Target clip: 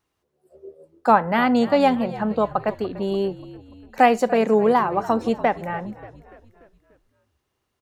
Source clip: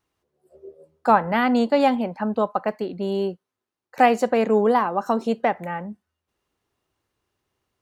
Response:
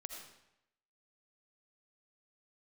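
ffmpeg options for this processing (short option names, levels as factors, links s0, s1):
-filter_complex "[0:a]asplit=6[s0][s1][s2][s3][s4][s5];[s1]adelay=291,afreqshift=-56,volume=0.141[s6];[s2]adelay=582,afreqshift=-112,volume=0.0733[s7];[s3]adelay=873,afreqshift=-168,volume=0.038[s8];[s4]adelay=1164,afreqshift=-224,volume=0.02[s9];[s5]adelay=1455,afreqshift=-280,volume=0.0104[s10];[s0][s6][s7][s8][s9][s10]amix=inputs=6:normalize=0,volume=1.12"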